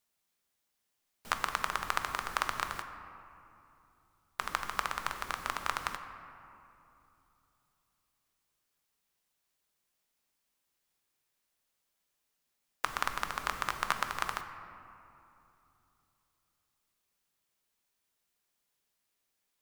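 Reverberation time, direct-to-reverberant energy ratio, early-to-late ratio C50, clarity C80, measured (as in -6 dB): 2.9 s, 7.0 dB, 8.5 dB, 9.5 dB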